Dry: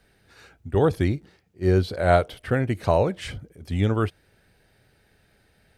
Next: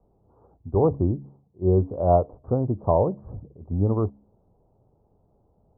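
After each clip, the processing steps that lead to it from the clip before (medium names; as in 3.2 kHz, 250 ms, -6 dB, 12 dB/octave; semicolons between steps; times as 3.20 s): steep low-pass 1.1 kHz 72 dB/octave; de-hum 69.34 Hz, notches 4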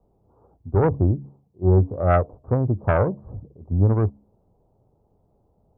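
self-modulated delay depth 0.35 ms; dynamic bell 100 Hz, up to +6 dB, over -37 dBFS, Q 1.1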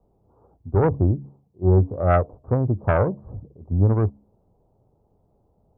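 no audible change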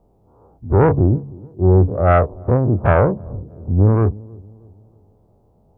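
every event in the spectrogram widened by 60 ms; feedback echo behind a low-pass 313 ms, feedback 42%, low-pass 510 Hz, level -22 dB; trim +3 dB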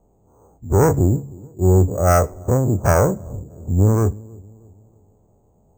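on a send at -19.5 dB: reverberation RT60 0.45 s, pre-delay 3 ms; on the sum: careless resampling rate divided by 6×, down filtered, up hold; trim -1.5 dB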